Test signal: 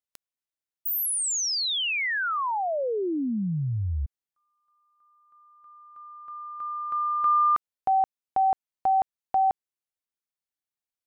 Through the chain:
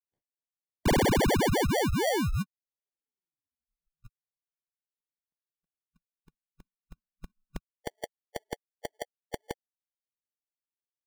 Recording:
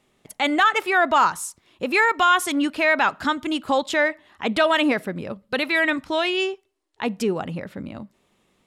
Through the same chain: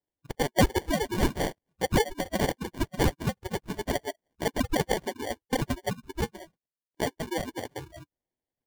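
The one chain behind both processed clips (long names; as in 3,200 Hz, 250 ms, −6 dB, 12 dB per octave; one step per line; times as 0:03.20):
harmonic-percussive split with one part muted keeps percussive
noise reduction from a noise print of the clip's start 26 dB
high-shelf EQ 4,800 Hz +6.5 dB
in parallel at +1 dB: downward compressor, threshold −33 dBFS
on the sum: decimation without filtering 34×
level −4 dB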